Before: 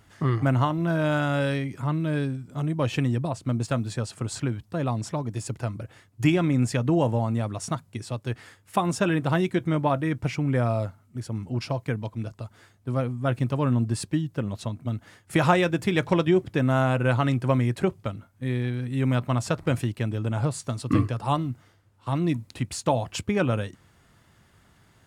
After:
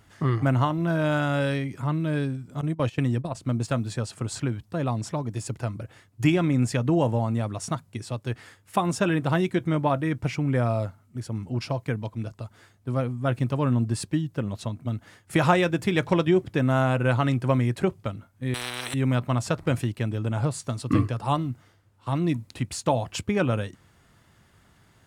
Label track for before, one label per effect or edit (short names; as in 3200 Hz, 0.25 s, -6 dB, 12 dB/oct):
2.610000	3.350000	gate -28 dBFS, range -14 dB
18.540000	18.940000	spectral compressor 10:1